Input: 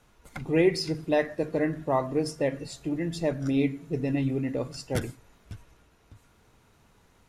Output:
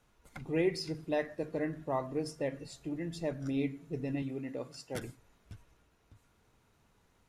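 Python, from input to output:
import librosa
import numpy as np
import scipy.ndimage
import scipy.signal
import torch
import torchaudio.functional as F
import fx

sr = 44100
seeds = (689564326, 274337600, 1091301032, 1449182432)

y = fx.highpass(x, sr, hz=220.0, slope=6, at=(4.22, 5.02))
y = y * librosa.db_to_amplitude(-8.0)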